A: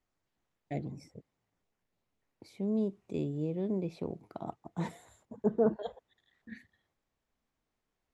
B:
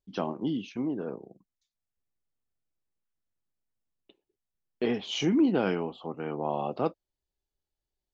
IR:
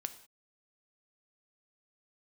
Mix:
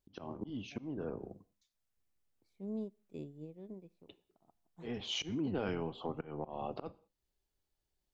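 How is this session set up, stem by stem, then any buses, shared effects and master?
+2.5 dB, 0.00 s, send -20 dB, upward expander 2.5:1, over -41 dBFS; auto duck -13 dB, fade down 0.85 s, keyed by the second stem
-1.0 dB, 0.00 s, send -4.5 dB, octaver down 1 oct, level -6 dB; auto swell 0.461 s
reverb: on, pre-delay 3 ms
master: compressor 3:1, threshold -36 dBFS, peak gain reduction 11.5 dB

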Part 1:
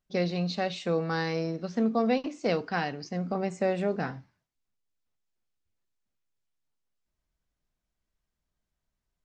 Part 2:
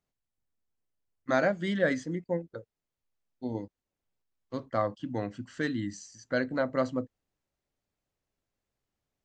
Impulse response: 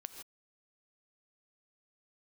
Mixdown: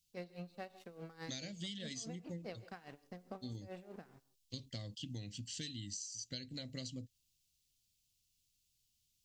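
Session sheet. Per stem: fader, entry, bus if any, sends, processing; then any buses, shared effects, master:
-13.5 dB, 0.00 s, send -6 dB, crossover distortion -43.5 dBFS; dB-linear tremolo 4.8 Hz, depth 22 dB
+1.5 dB, 0.00 s, no send, EQ curve 120 Hz 0 dB, 1300 Hz -30 dB, 2800 Hz +7 dB, 4700 Hz +12 dB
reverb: on, pre-delay 3 ms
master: compressor 16:1, threshold -41 dBFS, peak gain reduction 14 dB

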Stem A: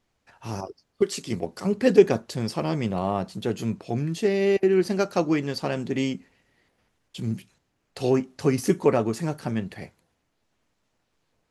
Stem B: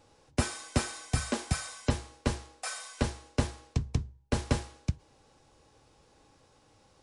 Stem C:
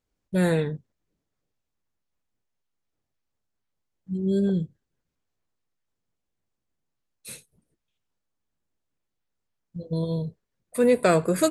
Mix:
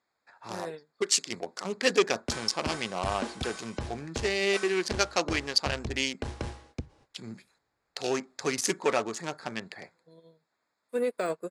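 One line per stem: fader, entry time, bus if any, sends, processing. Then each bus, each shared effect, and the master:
+0.5 dB, 0.00 s, no bus, no send, Wiener smoothing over 15 samples; weighting filter ITU-R 468
+0.5 dB, 1.90 s, bus A, no send, LPF 3500 Hz 6 dB/oct; gate -54 dBFS, range -23 dB
-2.5 dB, 0.15 s, bus A, no send, de-esser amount 70%; HPF 300 Hz 12 dB/oct; upward expander 2.5:1, over -39 dBFS
bus A: 0.0 dB, limiter -20 dBFS, peak gain reduction 8 dB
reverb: off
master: core saturation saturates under 1100 Hz

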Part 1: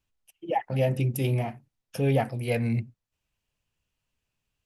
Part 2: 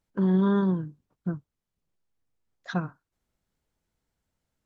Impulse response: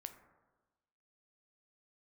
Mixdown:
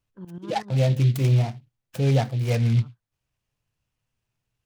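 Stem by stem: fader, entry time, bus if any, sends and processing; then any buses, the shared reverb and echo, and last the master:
-0.5 dB, 0.00 s, no send, bell 120 Hz +9 dB 0.55 oct; noise-modulated delay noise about 2900 Hz, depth 0.048 ms
-13.5 dB, 0.00 s, no send, tremolo saw up 8 Hz, depth 85%; wow and flutter 130 cents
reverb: off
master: dry

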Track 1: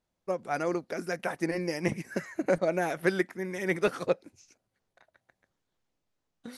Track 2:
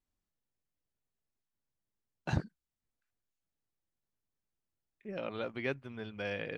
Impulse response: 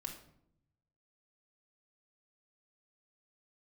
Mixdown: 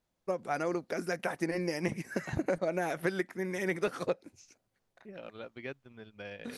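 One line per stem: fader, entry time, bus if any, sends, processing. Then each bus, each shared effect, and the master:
+0.5 dB, 0.00 s, no send, compressor 3:1, threshold -29 dBFS, peak gain reduction 7.5 dB
-7.5 dB, 0.00 s, no send, transient shaper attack +3 dB, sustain -11 dB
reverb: off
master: dry

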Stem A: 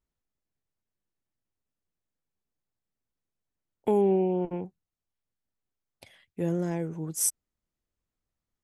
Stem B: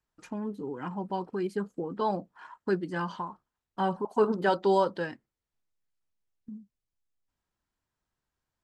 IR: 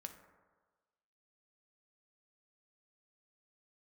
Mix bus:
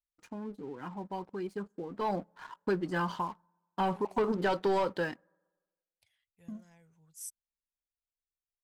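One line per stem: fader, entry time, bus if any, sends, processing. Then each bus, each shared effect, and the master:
-16.5 dB, 0.00 s, no send, passive tone stack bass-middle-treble 10-0-10
1.89 s -12.5 dB -> 2.25 s -5.5 dB, 0.00 s, send -22.5 dB, gate with hold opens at -53 dBFS; low shelf 350 Hz -7.5 dB; sample leveller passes 2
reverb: on, RT60 1.4 s, pre-delay 3 ms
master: low shelf 290 Hz +6 dB; compressor, threshold -25 dBFS, peak gain reduction 4.5 dB

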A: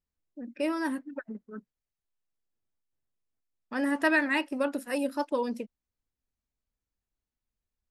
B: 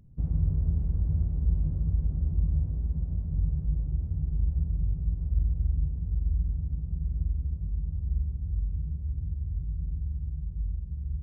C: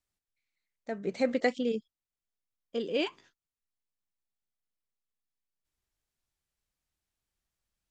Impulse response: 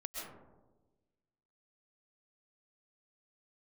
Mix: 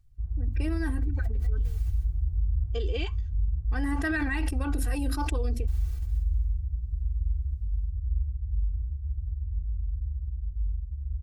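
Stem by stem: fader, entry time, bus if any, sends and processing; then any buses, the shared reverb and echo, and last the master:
-5.0 dB, 0.00 s, no send, sustainer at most 44 dB/s
-13.5 dB, 0.00 s, no send, ten-band EQ 125 Hz -3 dB, 250 Hz -11 dB, 500 Hz -11 dB; AGC gain up to 4.5 dB
-0.5 dB, 0.00 s, no send, bell 220 Hz -7 dB 2.3 oct; compressor, threshold -32 dBFS, peak gain reduction 8.5 dB; auto duck -23 dB, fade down 0.65 s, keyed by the first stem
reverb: off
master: low shelf 130 Hz +8 dB; comb 2.6 ms, depth 92%; limiter -19.5 dBFS, peak gain reduction 7 dB

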